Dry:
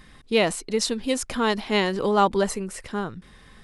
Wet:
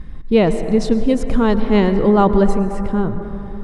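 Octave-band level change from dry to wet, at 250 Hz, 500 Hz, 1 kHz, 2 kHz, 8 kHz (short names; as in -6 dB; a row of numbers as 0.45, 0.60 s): +12.0 dB, +7.5 dB, +3.5 dB, -1.0 dB, n/a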